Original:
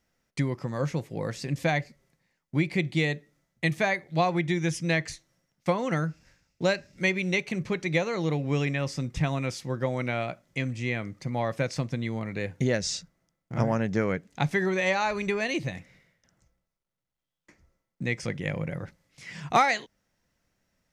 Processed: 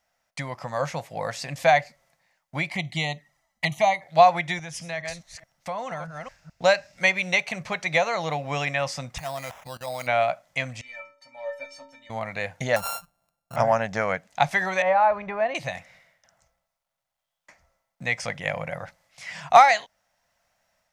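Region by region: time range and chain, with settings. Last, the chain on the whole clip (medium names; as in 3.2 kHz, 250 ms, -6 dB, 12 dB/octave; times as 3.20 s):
2.70–4.02 s: comb 1 ms, depth 53% + touch-sensitive flanger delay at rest 4.8 ms, full sweep at -23 dBFS
4.59–6.64 s: chunks repeated in reverse 212 ms, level -10 dB + bass shelf 160 Hz +9 dB + compression 3:1, threshold -34 dBFS
9.18–10.07 s: sample-rate reducer 4.4 kHz + level held to a coarse grid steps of 18 dB
10.81–12.10 s: overdrive pedal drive 10 dB, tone 5.2 kHz, clips at -14.5 dBFS + inharmonic resonator 270 Hz, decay 0.53 s, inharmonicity 0.03
12.76–13.56 s: sorted samples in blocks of 32 samples + peaking EQ 2.5 kHz -10 dB 2.6 oct
14.82–15.55 s: block-companded coder 5-bit + low-pass 1.2 kHz
whole clip: resonant low shelf 500 Hz -10 dB, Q 3; level rider gain up to 4 dB; trim +1.5 dB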